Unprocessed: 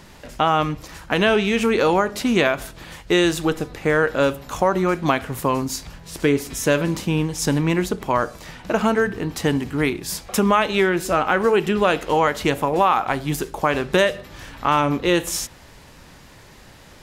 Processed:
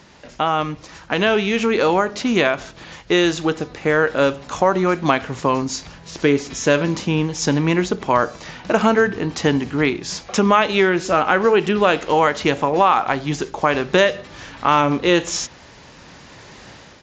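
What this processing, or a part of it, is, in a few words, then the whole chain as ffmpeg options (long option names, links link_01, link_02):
Bluetooth headset: -af "highpass=frequency=120:poles=1,dynaudnorm=framelen=760:gausssize=3:maxgain=10dB,aresample=16000,aresample=44100,volume=-1dB" -ar 16000 -c:a sbc -b:a 64k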